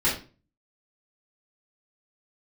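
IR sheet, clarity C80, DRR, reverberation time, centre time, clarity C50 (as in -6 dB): 12.0 dB, -10.0 dB, 0.35 s, 30 ms, 6.5 dB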